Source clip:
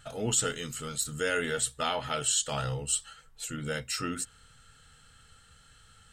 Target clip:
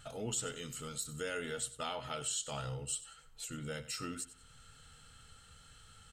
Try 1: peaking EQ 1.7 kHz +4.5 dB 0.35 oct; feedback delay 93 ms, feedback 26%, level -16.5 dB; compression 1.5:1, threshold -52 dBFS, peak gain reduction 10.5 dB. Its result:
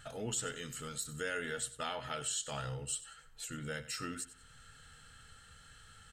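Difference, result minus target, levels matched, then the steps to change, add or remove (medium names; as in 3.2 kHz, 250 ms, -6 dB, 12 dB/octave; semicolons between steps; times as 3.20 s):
2 kHz band +3.5 dB
change: peaking EQ 1.7 kHz -4.5 dB 0.35 oct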